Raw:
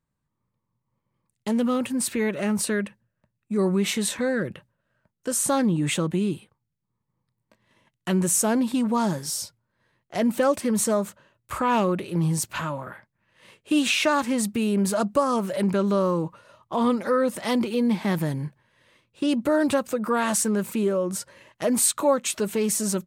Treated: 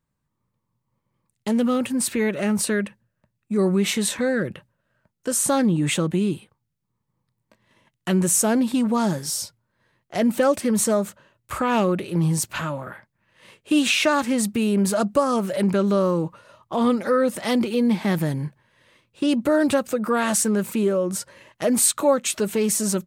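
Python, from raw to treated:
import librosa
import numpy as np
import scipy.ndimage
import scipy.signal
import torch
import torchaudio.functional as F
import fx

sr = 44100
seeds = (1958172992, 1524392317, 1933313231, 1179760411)

y = fx.dynamic_eq(x, sr, hz=1000.0, q=6.0, threshold_db=-45.0, ratio=4.0, max_db=-6)
y = F.gain(torch.from_numpy(y), 2.5).numpy()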